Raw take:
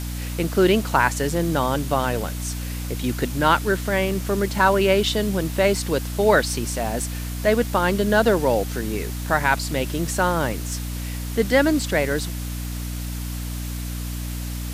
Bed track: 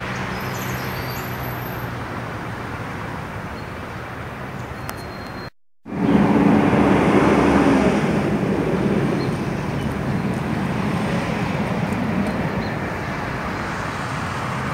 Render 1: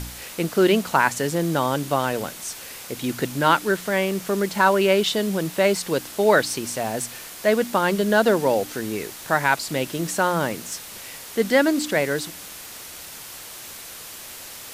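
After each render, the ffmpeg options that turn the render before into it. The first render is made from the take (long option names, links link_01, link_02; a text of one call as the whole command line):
ffmpeg -i in.wav -af "bandreject=frequency=60:width_type=h:width=4,bandreject=frequency=120:width_type=h:width=4,bandreject=frequency=180:width_type=h:width=4,bandreject=frequency=240:width_type=h:width=4,bandreject=frequency=300:width_type=h:width=4" out.wav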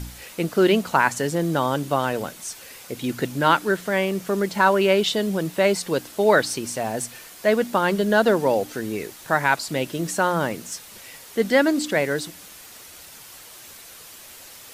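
ffmpeg -i in.wav -af "afftdn=noise_reduction=6:noise_floor=-39" out.wav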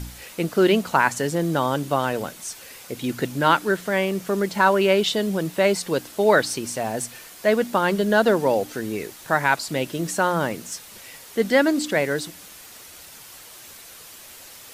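ffmpeg -i in.wav -af anull out.wav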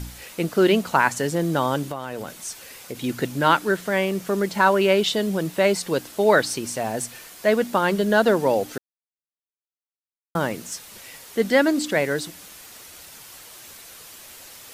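ffmpeg -i in.wav -filter_complex "[0:a]asettb=1/sr,asplit=3[link_01][link_02][link_03];[link_01]atrim=end=1.834[link_04];[link_02]atrim=start=1.83:end=3.02,asetpts=PTS-STARTPTS,afade=type=in:duration=0.004:curve=qsin,afade=type=out:start_time=1.186:duration=0.004:curve=qsin,acompressor=threshold=-26dB:ratio=5:attack=3.2:release=140:knee=1:detection=peak[link_05];[link_03]atrim=start=3.016[link_06];[link_04][link_05]acrossfade=duration=0.004:curve1=hsin:curve2=qsin[link_07];[link_07][link_06]acrossfade=duration=0.004:curve1=qsin:curve2=hsin,asplit=3[link_08][link_09][link_10];[link_08]atrim=end=8.78,asetpts=PTS-STARTPTS,afade=type=out:start_time=8.776:duration=0.004:curve=hsin[link_11];[link_09]atrim=start=8.78:end=10.35,asetpts=PTS-STARTPTS,volume=0[link_12];[link_10]atrim=start=10.35,asetpts=PTS-STARTPTS,afade=type=in:duration=0.004:curve=hsin[link_13];[link_11][link_12][link_13]concat=n=3:v=0:a=1" out.wav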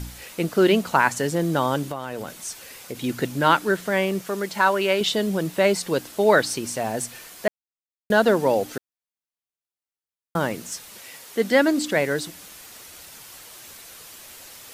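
ffmpeg -i in.wav -filter_complex "[0:a]asettb=1/sr,asplit=3[link_01][link_02][link_03];[link_01]atrim=end=4.214[link_04];[link_02]atrim=start=4.21:end=5.01,asetpts=PTS-STARTPTS,afade=type=in:duration=0.004:curve=qsin,afade=type=out:start_time=0.796:duration=0.004:curve=qsin,lowshelf=frequency=440:gain=-8[link_05];[link_03]atrim=start=5.006[link_06];[link_04][link_05]acrossfade=duration=0.004:curve1=hsin:curve2=qsin[link_07];[link_07][link_06]acrossfade=duration=0.004:curve1=qsin:curve2=hsin,asettb=1/sr,asplit=3[link_08][link_09][link_10];[link_08]atrim=end=10.914[link_11];[link_09]atrim=start=10.91:end=11.52,asetpts=PTS-STARTPTS,afade=type=in:duration=0.004:curve=qsin,afade=type=out:start_time=0.606:duration=0.004:curve=qsin,highpass=frequency=170:poles=1[link_12];[link_10]atrim=start=11.516[link_13];[link_11][link_12]acrossfade=duration=0.004:curve1=hsin:curve2=qsin[link_14];[link_14][link_13]acrossfade=duration=0.004:curve1=qsin:curve2=hsin,asplit=3[link_15][link_16][link_17];[link_15]atrim=end=7.48,asetpts=PTS-STARTPTS,afade=type=out:start_time=7.476:duration=0.004:curve=hsin[link_18];[link_16]atrim=start=7.48:end=8.1,asetpts=PTS-STARTPTS,volume=0[link_19];[link_17]atrim=start=8.1,asetpts=PTS-STARTPTS,afade=type=in:duration=0.004:curve=hsin[link_20];[link_18][link_19][link_20]concat=n=3:v=0:a=1" out.wav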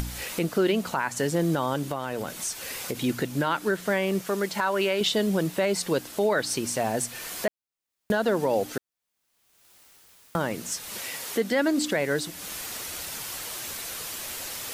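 ffmpeg -i in.wav -af "acompressor=mode=upward:threshold=-26dB:ratio=2.5,alimiter=limit=-14.5dB:level=0:latency=1:release=145" out.wav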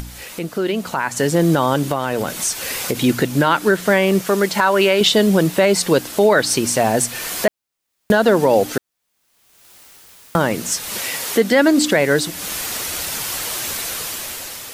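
ffmpeg -i in.wav -af "dynaudnorm=framelen=300:gausssize=7:maxgain=11dB" out.wav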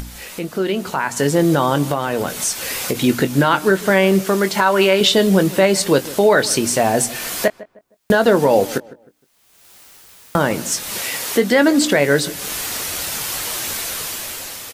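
ffmpeg -i in.wav -filter_complex "[0:a]asplit=2[link_01][link_02];[link_02]adelay=21,volume=-11dB[link_03];[link_01][link_03]amix=inputs=2:normalize=0,asplit=2[link_04][link_05];[link_05]adelay=155,lowpass=frequency=1400:poles=1,volume=-18dB,asplit=2[link_06][link_07];[link_07]adelay=155,lowpass=frequency=1400:poles=1,volume=0.33,asplit=2[link_08][link_09];[link_09]adelay=155,lowpass=frequency=1400:poles=1,volume=0.33[link_10];[link_04][link_06][link_08][link_10]amix=inputs=4:normalize=0" out.wav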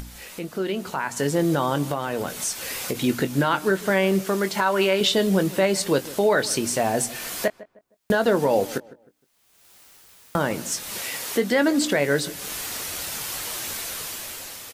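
ffmpeg -i in.wav -af "volume=-6.5dB" out.wav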